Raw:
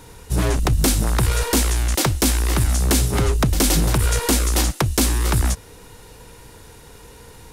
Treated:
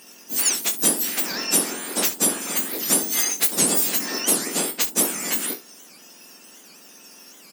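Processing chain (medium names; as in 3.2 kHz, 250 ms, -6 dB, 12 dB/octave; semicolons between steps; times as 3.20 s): spectrum inverted on a logarithmic axis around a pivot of 1.6 kHz; high-pass 1.2 kHz 6 dB/octave; peaking EQ 12 kHz +12.5 dB 2.7 oct; on a send: early reflections 24 ms -8 dB, 68 ms -16 dB; on the sum: warped record 78 rpm, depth 250 cents; trim -2.5 dB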